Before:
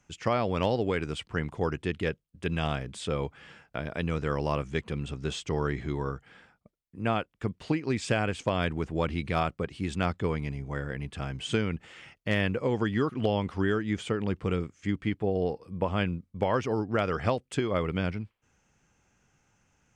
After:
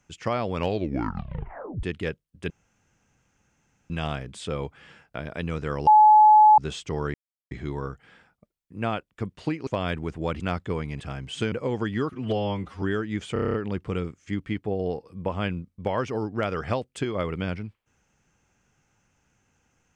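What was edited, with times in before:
0:00.56: tape stop 1.27 s
0:02.50: splice in room tone 1.40 s
0:04.47–0:05.18: beep over 854 Hz −10.5 dBFS
0:05.74: splice in silence 0.37 s
0:07.90–0:08.41: remove
0:09.14–0:09.94: remove
0:10.54–0:11.12: remove
0:11.64–0:12.52: remove
0:13.13–0:13.59: time-stretch 1.5×
0:14.10: stutter 0.03 s, 8 plays

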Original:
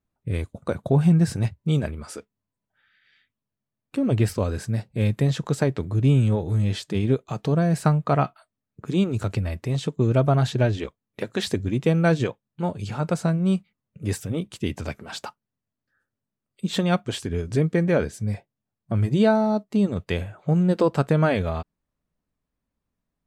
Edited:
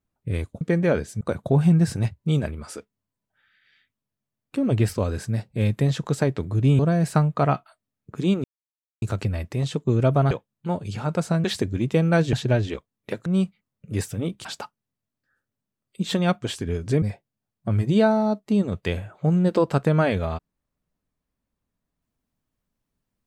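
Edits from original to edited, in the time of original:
0:06.19–0:07.49: remove
0:09.14: splice in silence 0.58 s
0:10.43–0:11.36: swap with 0:12.25–0:13.38
0:14.57–0:15.09: remove
0:17.66–0:18.26: move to 0:00.61

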